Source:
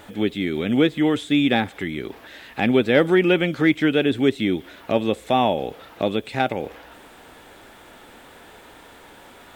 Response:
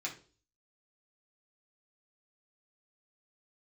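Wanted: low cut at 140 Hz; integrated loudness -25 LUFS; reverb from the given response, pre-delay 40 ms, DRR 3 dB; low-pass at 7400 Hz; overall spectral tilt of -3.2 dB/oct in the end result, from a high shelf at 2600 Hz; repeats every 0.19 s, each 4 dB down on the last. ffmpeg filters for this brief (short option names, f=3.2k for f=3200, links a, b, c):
-filter_complex "[0:a]highpass=140,lowpass=7.4k,highshelf=f=2.6k:g=5,aecho=1:1:190|380|570|760|950|1140|1330|1520|1710:0.631|0.398|0.25|0.158|0.0994|0.0626|0.0394|0.0249|0.0157,asplit=2[a][b];[1:a]atrim=start_sample=2205,adelay=40[c];[b][c]afir=irnorm=-1:irlink=0,volume=-4.5dB[d];[a][d]amix=inputs=2:normalize=0,volume=-7.5dB"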